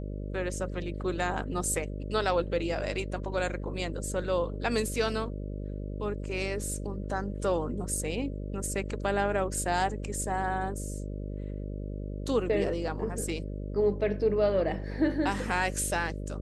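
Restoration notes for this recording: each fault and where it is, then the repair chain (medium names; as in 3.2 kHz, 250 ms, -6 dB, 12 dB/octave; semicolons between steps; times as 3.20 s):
buzz 50 Hz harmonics 12 -36 dBFS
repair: de-hum 50 Hz, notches 12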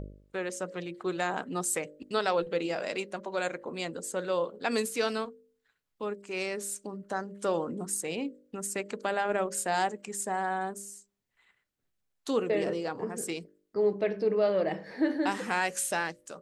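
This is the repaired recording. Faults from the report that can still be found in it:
nothing left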